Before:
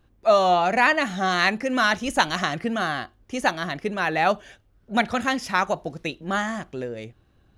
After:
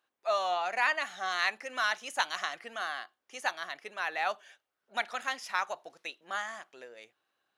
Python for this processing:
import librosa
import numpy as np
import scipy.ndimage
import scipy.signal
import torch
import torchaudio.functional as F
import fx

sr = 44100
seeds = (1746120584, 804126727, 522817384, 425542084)

y = scipy.signal.sosfilt(scipy.signal.butter(2, 800.0, 'highpass', fs=sr, output='sos'), x)
y = y * 10.0 ** (-8.0 / 20.0)